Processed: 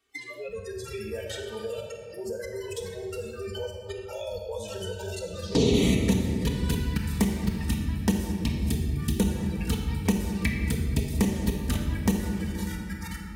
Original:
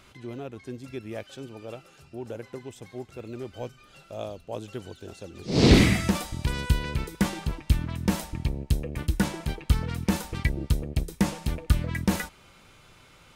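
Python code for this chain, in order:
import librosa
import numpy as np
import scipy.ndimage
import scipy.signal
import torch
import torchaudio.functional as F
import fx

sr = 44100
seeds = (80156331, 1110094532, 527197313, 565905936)

y = fx.echo_feedback(x, sr, ms=473, feedback_pct=49, wet_db=-16.0)
y = fx.level_steps(y, sr, step_db=24)
y = fx.small_body(y, sr, hz=(370.0, 1800.0), ring_ms=25, db=9)
y = fx.env_flanger(y, sr, rest_ms=2.7, full_db=-24.0)
y = scipy.signal.sosfilt(scipy.signal.butter(2, 64.0, 'highpass', fs=sr, output='sos'), y)
y = fx.high_shelf(y, sr, hz=4300.0, db=7.5)
y = fx.noise_reduce_blind(y, sr, reduce_db=29)
y = fx.peak_eq(y, sr, hz=120.0, db=-7.0, octaves=0.66)
y = fx.notch_comb(y, sr, f0_hz=350.0)
y = fx.room_shoebox(y, sr, seeds[0], volume_m3=1300.0, walls='mixed', distance_m=1.7)
y = fx.band_squash(y, sr, depth_pct=70)
y = F.gain(torch.from_numpy(y), 6.0).numpy()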